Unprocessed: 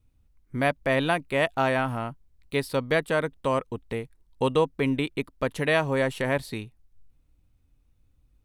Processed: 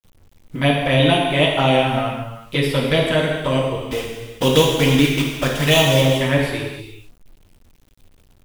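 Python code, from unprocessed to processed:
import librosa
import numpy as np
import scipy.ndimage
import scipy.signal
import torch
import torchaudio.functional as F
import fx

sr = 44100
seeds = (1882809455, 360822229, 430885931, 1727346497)

y = fx.block_float(x, sr, bits=3, at=(3.84, 6.0), fade=0.02)
y = fx.low_shelf(y, sr, hz=130.0, db=4.5)
y = fx.env_flanger(y, sr, rest_ms=10.1, full_db=-19.0)
y = fx.peak_eq(y, sr, hz=3300.0, db=8.5, octaves=0.59)
y = fx.notch(y, sr, hz=4200.0, q=9.7)
y = fx.rev_gated(y, sr, seeds[0], gate_ms=470, shape='falling', drr_db=-1.5)
y = fx.quant_dither(y, sr, seeds[1], bits=10, dither='none')
y = y * librosa.db_to_amplitude(6.0)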